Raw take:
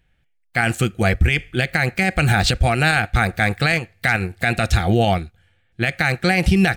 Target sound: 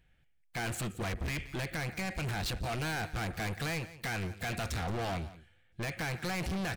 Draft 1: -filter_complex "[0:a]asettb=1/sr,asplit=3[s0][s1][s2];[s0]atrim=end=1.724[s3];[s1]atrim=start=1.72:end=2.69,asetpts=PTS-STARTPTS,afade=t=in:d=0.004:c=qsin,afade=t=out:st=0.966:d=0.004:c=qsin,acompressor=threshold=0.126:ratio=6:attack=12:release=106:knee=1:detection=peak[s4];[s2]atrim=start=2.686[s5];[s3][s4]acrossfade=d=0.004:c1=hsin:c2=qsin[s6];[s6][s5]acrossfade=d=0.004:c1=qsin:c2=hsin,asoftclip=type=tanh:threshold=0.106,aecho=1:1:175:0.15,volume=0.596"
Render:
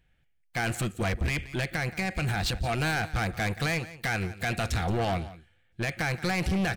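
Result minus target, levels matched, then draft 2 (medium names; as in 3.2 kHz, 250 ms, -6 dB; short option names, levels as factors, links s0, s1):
saturation: distortion -4 dB
-filter_complex "[0:a]asettb=1/sr,asplit=3[s0][s1][s2];[s0]atrim=end=1.724[s3];[s1]atrim=start=1.72:end=2.69,asetpts=PTS-STARTPTS,afade=t=in:d=0.004:c=qsin,afade=t=out:st=0.966:d=0.004:c=qsin,acompressor=threshold=0.126:ratio=6:attack=12:release=106:knee=1:detection=peak[s4];[s2]atrim=start=2.686[s5];[s3][s4]acrossfade=d=0.004:c1=hsin:c2=qsin[s6];[s6][s5]acrossfade=d=0.004:c1=qsin:c2=hsin,asoftclip=type=tanh:threshold=0.0376,aecho=1:1:175:0.15,volume=0.596"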